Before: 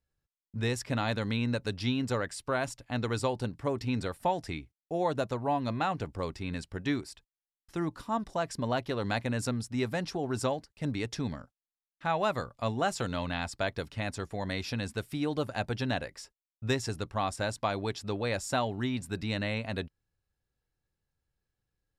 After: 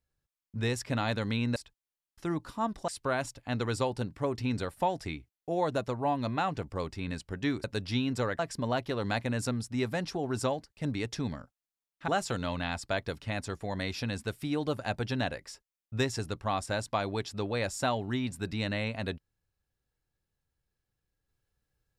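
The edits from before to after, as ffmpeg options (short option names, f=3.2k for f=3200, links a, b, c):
-filter_complex "[0:a]asplit=6[a][b][c][d][e][f];[a]atrim=end=1.562[g];[b]atrim=start=7.068:end=8.392[h];[c]atrim=start=2.308:end=7.072[i];[d]atrim=start=1.558:end=2.312[j];[e]atrim=start=8.388:end=12.082[k];[f]atrim=start=12.778[l];[g][h]acrossfade=d=0.004:c1=hsin:c2=hsin[m];[m][i]acrossfade=d=0.004:c1=hsin:c2=hsin[n];[n][j]acrossfade=d=0.004:c1=hsin:c2=hsin[o];[o][k]acrossfade=d=0.004:c1=hsin:c2=hsin[p];[p][l]acrossfade=d=0.004:c1=hsin:c2=hsin"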